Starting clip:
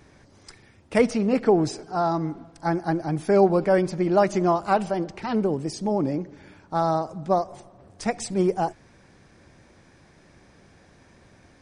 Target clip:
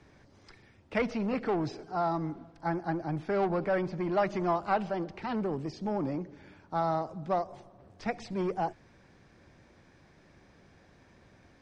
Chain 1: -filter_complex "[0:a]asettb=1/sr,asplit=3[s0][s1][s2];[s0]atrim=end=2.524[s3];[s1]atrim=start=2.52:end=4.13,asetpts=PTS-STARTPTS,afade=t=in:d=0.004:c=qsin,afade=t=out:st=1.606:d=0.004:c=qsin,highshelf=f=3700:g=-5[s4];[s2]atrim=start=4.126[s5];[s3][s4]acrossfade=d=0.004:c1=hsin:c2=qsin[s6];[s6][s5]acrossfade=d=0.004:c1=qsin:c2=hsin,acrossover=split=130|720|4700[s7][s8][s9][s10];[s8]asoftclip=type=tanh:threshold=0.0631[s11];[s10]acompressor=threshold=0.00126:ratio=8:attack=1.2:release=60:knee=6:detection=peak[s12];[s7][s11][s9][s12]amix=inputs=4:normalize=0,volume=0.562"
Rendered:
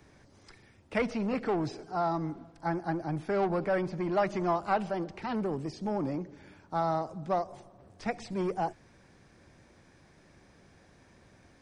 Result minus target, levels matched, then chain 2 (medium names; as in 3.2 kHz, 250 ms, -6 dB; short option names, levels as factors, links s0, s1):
8 kHz band +3.0 dB
-filter_complex "[0:a]asettb=1/sr,asplit=3[s0][s1][s2];[s0]atrim=end=2.524[s3];[s1]atrim=start=2.52:end=4.13,asetpts=PTS-STARTPTS,afade=t=in:d=0.004:c=qsin,afade=t=out:st=1.606:d=0.004:c=qsin,highshelf=f=3700:g=-5[s4];[s2]atrim=start=4.126[s5];[s3][s4]acrossfade=d=0.004:c1=hsin:c2=qsin[s6];[s6][s5]acrossfade=d=0.004:c1=qsin:c2=hsin,acrossover=split=130|720|4700[s7][s8][s9][s10];[s8]asoftclip=type=tanh:threshold=0.0631[s11];[s10]acompressor=threshold=0.00126:ratio=8:attack=1.2:release=60:knee=6:detection=peak,lowpass=6400[s12];[s7][s11][s9][s12]amix=inputs=4:normalize=0,volume=0.562"